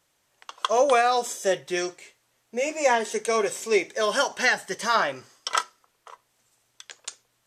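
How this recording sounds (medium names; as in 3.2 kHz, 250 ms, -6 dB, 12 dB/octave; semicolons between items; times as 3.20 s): noise floor -71 dBFS; spectral tilt -1.5 dB/octave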